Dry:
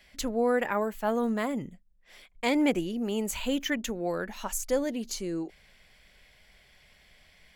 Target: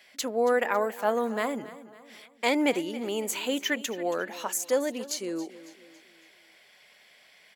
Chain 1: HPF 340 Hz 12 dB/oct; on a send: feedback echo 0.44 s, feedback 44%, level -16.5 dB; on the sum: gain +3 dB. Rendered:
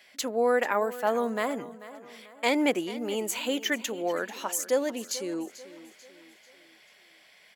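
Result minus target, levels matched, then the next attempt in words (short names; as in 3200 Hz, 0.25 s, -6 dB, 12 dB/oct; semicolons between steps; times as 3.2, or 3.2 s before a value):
echo 0.164 s late
HPF 340 Hz 12 dB/oct; on a send: feedback echo 0.276 s, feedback 44%, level -16.5 dB; on the sum: gain +3 dB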